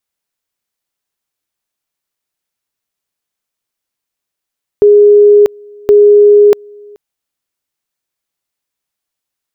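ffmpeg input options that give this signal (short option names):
-f lavfi -i "aevalsrc='pow(10,(-1.5-29.5*gte(mod(t,1.07),0.64))/20)*sin(2*PI*413*t)':d=2.14:s=44100"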